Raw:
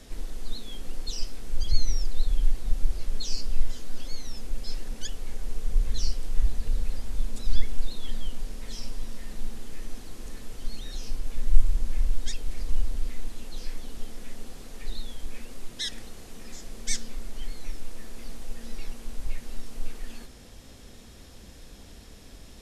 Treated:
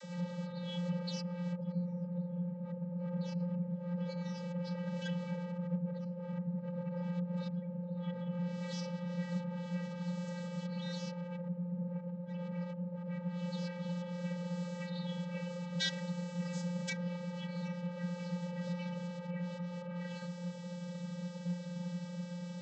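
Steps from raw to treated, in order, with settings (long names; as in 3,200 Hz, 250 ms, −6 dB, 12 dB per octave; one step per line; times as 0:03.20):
treble cut that deepens with the level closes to 530 Hz, closed at −15 dBFS
channel vocoder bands 32, square 176 Hz
level +9.5 dB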